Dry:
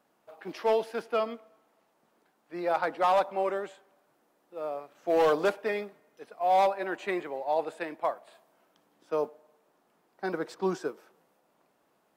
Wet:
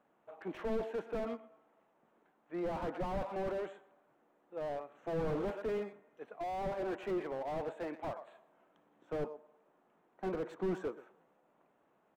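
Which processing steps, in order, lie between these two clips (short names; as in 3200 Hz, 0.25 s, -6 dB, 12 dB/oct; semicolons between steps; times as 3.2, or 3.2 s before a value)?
Wiener smoothing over 9 samples; outdoor echo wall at 21 m, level -20 dB; slew limiter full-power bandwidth 12 Hz; gain -1.5 dB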